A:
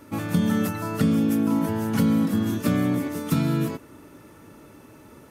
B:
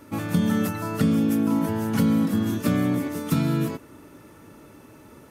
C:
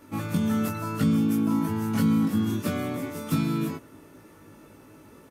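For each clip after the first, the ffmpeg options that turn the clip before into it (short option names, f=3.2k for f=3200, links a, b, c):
-af anull
-filter_complex "[0:a]bandreject=f=60:t=h:w=6,bandreject=f=120:t=h:w=6,asplit=2[a][b];[b]adelay=19,volume=-2.5dB[c];[a][c]amix=inputs=2:normalize=0,volume=-4.5dB"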